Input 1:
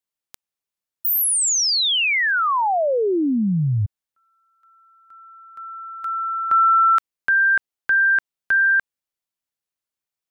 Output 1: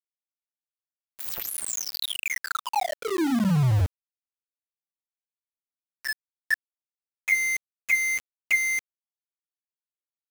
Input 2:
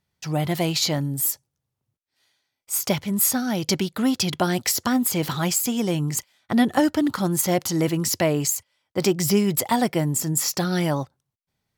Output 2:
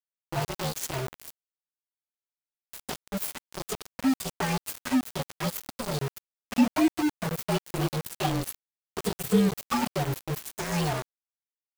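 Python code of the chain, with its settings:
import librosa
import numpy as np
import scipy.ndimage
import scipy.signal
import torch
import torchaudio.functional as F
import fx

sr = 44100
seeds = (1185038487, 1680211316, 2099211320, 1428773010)

y = fx.partial_stretch(x, sr, pct=115)
y = fx.env_flanger(y, sr, rest_ms=8.3, full_db=-15.0)
y = np.where(np.abs(y) >= 10.0 ** (-26.0 / 20.0), y, 0.0)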